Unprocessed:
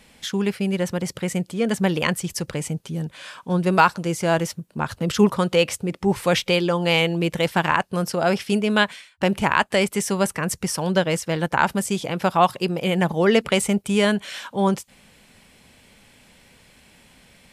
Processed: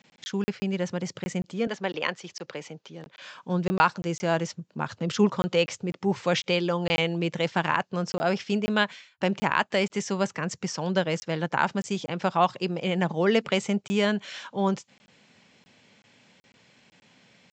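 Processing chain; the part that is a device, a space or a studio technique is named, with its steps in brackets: call with lost packets (HPF 110 Hz 24 dB/oct; downsampling 16000 Hz; packet loss packets of 20 ms random); 1.67–3.22 three-band isolator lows -15 dB, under 320 Hz, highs -23 dB, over 6400 Hz; gain -5 dB

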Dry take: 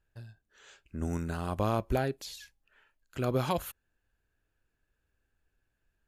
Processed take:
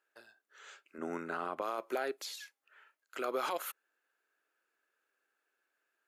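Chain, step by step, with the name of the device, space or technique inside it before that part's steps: laptop speaker (HPF 360 Hz 24 dB/oct; bell 1300 Hz +8 dB 0.41 oct; bell 2100 Hz +5 dB 0.26 oct; limiter -25 dBFS, peak gain reduction 9.5 dB); 0.98–1.62 tone controls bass +12 dB, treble -14 dB

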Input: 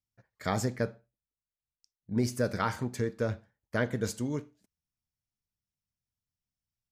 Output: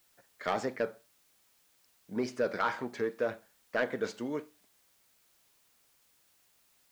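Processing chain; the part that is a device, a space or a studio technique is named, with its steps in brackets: tape answering machine (BPF 370–3200 Hz; soft clip -24 dBFS, distortion -14 dB; wow and flutter; white noise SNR 31 dB); gain +3.5 dB

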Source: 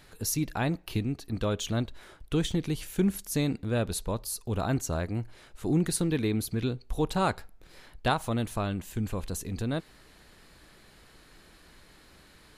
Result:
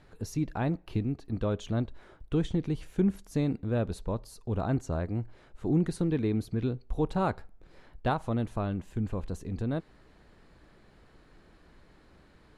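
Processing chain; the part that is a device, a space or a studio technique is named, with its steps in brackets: through cloth (LPF 9100 Hz 12 dB/oct; high shelf 2000 Hz -14 dB)

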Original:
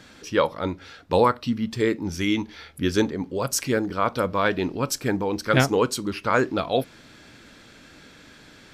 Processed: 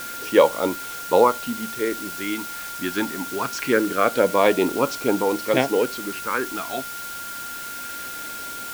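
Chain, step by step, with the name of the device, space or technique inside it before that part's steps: shortwave radio (BPF 310–2800 Hz; tremolo 0.23 Hz, depth 67%; LFO notch sine 0.25 Hz 470–1800 Hz; whine 1400 Hz -42 dBFS; white noise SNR 13 dB); gain +8.5 dB

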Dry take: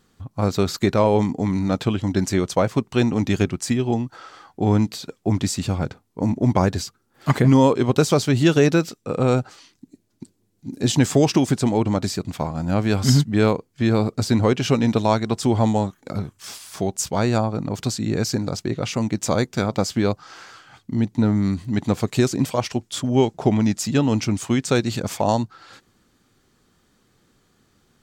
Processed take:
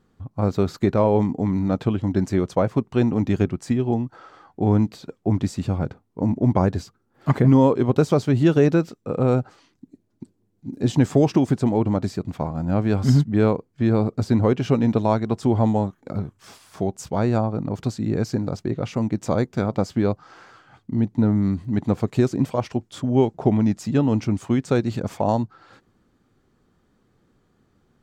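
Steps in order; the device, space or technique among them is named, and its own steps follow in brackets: through cloth (high shelf 2100 Hz -14 dB)

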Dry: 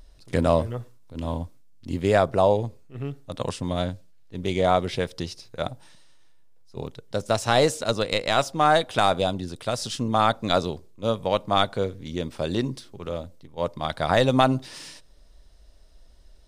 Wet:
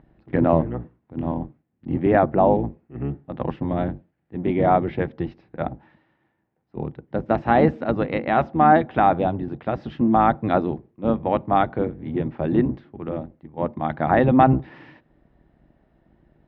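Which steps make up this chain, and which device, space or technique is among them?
sub-octave bass pedal (octaver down 1 oct, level 0 dB; speaker cabinet 67–2300 Hz, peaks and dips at 85 Hz -5 dB, 150 Hz +7 dB, 230 Hz +7 dB, 330 Hz +10 dB, 790 Hz +8 dB, 1800 Hz +4 dB); gain -1.5 dB

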